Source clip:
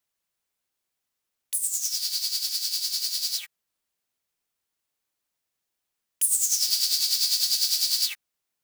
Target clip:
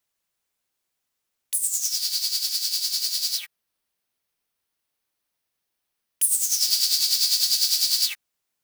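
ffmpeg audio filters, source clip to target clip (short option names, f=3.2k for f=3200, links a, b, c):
-filter_complex "[0:a]asettb=1/sr,asplit=3[a][b][c];[a]atrim=end=3.354[d];[b]atrim=start=3.35:end=6.61,asetpts=PTS-STARTPTS,afade=t=in:d=0.004:c=qsin,afade=t=out:st=3.256:d=0.004:c=qsin,equalizer=f=7.2k:t=o:w=0.26:g=-6.5[e];[c]atrim=start=6.606[f];[d][e]acrossfade=d=0.004:c1=hsin:c2=qsin[g];[g][f]acrossfade=d=0.004:c1=qsin:c2=hsin,volume=2.5dB"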